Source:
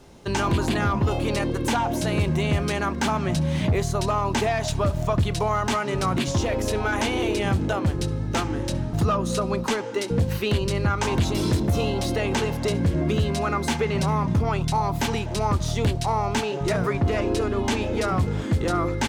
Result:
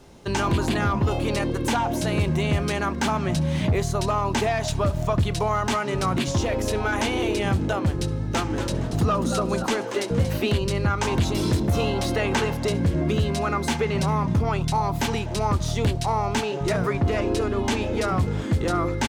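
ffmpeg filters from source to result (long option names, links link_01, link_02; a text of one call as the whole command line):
ffmpeg -i in.wav -filter_complex "[0:a]asplit=3[link_01][link_02][link_03];[link_01]afade=type=out:start_time=8.5:duration=0.02[link_04];[link_02]asplit=4[link_05][link_06][link_07][link_08];[link_06]adelay=233,afreqshift=140,volume=-9.5dB[link_09];[link_07]adelay=466,afreqshift=280,volume=-20dB[link_10];[link_08]adelay=699,afreqshift=420,volume=-30.4dB[link_11];[link_05][link_09][link_10][link_11]amix=inputs=4:normalize=0,afade=type=in:start_time=8.5:duration=0.02,afade=type=out:start_time=10.51:duration=0.02[link_12];[link_03]afade=type=in:start_time=10.51:duration=0.02[link_13];[link_04][link_12][link_13]amix=inputs=3:normalize=0,asettb=1/sr,asplit=3[link_14][link_15][link_16];[link_14]atrim=end=11.714[link_17];[link_15]atrim=start=11.71:end=12.54,asetpts=PTS-STARTPTS,afade=type=in:duration=0.004:curve=qsin,afade=type=out:start_time=0.826:duration=0.004:curve=qsin,equalizer=frequency=1400:width=0.92:gain=4.5[link_18];[link_16]atrim=start=12.536[link_19];[link_17][link_18]acrossfade=duration=0.004:curve1=hsin:curve2=qsin[link_20];[link_20][link_19]acrossfade=duration=0.004:curve1=qsin:curve2=hsin" out.wav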